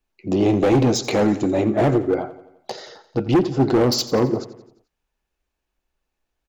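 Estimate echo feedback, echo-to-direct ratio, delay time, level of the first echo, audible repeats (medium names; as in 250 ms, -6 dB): 54%, -14.5 dB, 87 ms, -16.0 dB, 4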